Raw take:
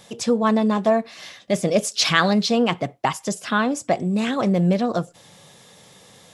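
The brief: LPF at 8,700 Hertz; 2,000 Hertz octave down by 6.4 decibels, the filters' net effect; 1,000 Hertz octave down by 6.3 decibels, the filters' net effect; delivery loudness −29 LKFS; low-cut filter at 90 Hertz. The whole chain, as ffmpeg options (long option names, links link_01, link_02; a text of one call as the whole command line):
ffmpeg -i in.wav -af "highpass=90,lowpass=8700,equalizer=frequency=1000:width_type=o:gain=-7.5,equalizer=frequency=2000:width_type=o:gain=-5.5,volume=-6dB" out.wav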